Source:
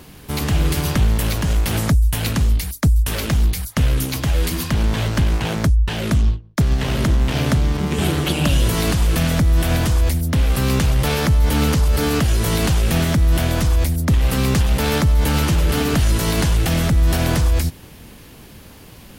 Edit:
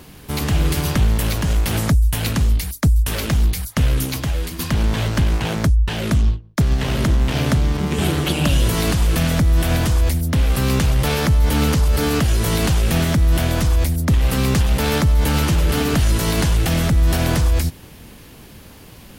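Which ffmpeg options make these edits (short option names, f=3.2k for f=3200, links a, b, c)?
-filter_complex "[0:a]asplit=2[a][b];[a]atrim=end=4.59,asetpts=PTS-STARTPTS,afade=t=out:st=4.09:d=0.5:silence=0.334965[c];[b]atrim=start=4.59,asetpts=PTS-STARTPTS,afade=t=in:d=0.004:c=hsin:silence=0.334965[d];[c][d]concat=n=2:v=0:a=1"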